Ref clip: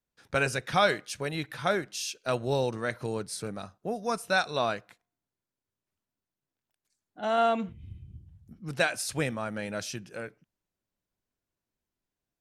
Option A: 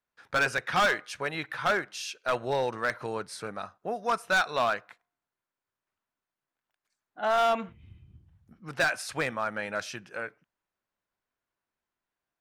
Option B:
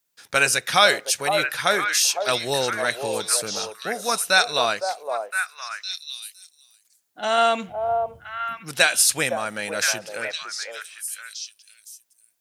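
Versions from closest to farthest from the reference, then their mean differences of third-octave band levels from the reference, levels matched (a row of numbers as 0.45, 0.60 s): A, B; 4.0, 8.5 dB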